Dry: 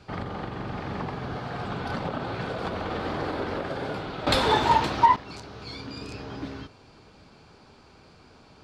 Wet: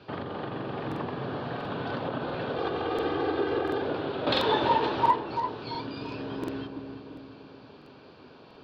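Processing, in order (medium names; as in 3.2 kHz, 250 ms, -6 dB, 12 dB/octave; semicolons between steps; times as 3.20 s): 2.55–3.82 s: comb 2.5 ms, depth 91%; in parallel at +2 dB: compression, threshold -35 dBFS, peak gain reduction 20.5 dB; on the sum: cabinet simulation 160–3800 Hz, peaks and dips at 190 Hz -7 dB, 790 Hz -5 dB, 1.3 kHz -5 dB, 2.1 kHz -9 dB; filtered feedback delay 339 ms, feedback 51%, low-pass 1.1 kHz, level -5 dB; crackling interface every 0.69 s, samples 2048, repeat, from 0.87 s; trim -2.5 dB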